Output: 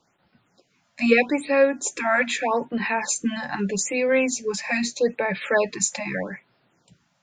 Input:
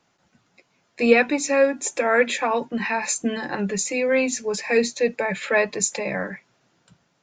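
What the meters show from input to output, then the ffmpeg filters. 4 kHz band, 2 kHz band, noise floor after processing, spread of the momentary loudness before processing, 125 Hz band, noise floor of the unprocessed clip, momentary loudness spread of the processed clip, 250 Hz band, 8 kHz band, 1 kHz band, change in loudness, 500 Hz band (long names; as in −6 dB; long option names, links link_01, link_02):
−0.5 dB, −0.5 dB, −69 dBFS, 9 LU, 0.0 dB, −68 dBFS, 8 LU, 0.0 dB, −0.5 dB, −0.5 dB, −1.0 dB, −1.5 dB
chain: -af "afftfilt=real='re*(1-between(b*sr/1024,360*pow(7700/360,0.5+0.5*sin(2*PI*0.8*pts/sr))/1.41,360*pow(7700/360,0.5+0.5*sin(2*PI*0.8*pts/sr))*1.41))':imag='im*(1-between(b*sr/1024,360*pow(7700/360,0.5+0.5*sin(2*PI*0.8*pts/sr))/1.41,360*pow(7700/360,0.5+0.5*sin(2*PI*0.8*pts/sr))*1.41))':win_size=1024:overlap=0.75"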